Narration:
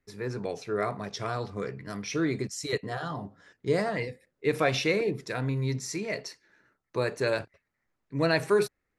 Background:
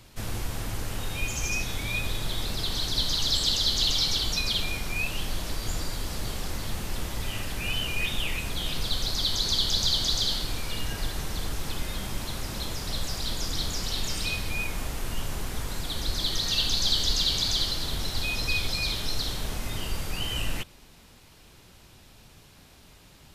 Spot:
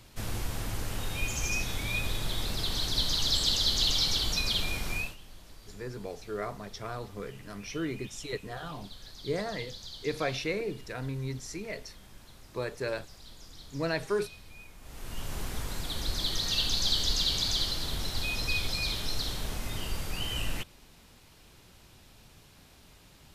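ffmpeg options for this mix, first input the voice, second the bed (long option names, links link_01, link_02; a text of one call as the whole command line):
ffmpeg -i stem1.wav -i stem2.wav -filter_complex "[0:a]adelay=5600,volume=-6dB[link_01];[1:a]volume=14.5dB,afade=type=out:start_time=4.94:duration=0.22:silence=0.133352,afade=type=in:start_time=14.81:duration=0.6:silence=0.149624[link_02];[link_01][link_02]amix=inputs=2:normalize=0" out.wav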